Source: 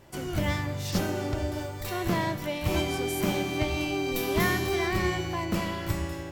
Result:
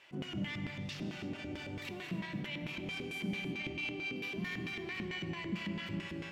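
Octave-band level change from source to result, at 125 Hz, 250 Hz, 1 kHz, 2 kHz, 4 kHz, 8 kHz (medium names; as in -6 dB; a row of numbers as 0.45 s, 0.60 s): -12.0 dB, -9.5 dB, -18.0 dB, -7.5 dB, -8.5 dB, -20.0 dB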